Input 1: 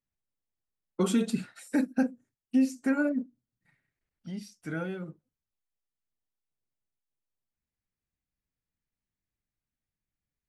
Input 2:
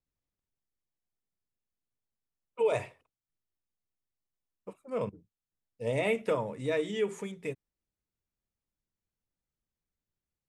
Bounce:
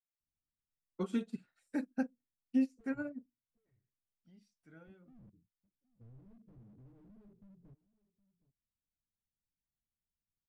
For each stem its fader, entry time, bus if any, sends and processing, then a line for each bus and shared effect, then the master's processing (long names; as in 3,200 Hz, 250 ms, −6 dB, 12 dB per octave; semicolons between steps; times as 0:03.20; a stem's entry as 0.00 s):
−5.0 dB, 0.00 s, no send, no echo send, expander for the loud parts 2.5 to 1, over −33 dBFS
−6.0 dB, 0.20 s, no send, echo send −19.5 dB, inverse Chebyshev low-pass filter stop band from 1,000 Hz, stop band 60 dB; downward compressor 3 to 1, threshold −48 dBFS, peak gain reduction 12 dB; slew-rate limiting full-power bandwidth 0.54 Hz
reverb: not used
echo: single-tap delay 766 ms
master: high-shelf EQ 8,400 Hz −9.5 dB